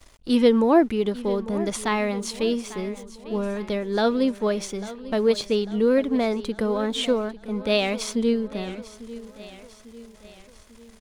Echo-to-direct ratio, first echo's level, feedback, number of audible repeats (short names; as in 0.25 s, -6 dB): -15.0 dB, -16.0 dB, 50%, 4